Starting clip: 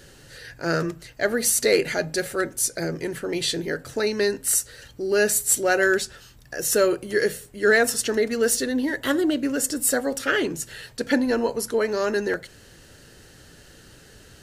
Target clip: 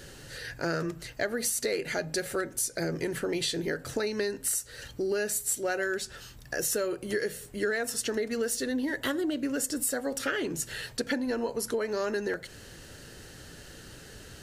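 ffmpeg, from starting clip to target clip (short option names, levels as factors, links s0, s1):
-af "acompressor=threshold=0.0355:ratio=6,volume=1.19"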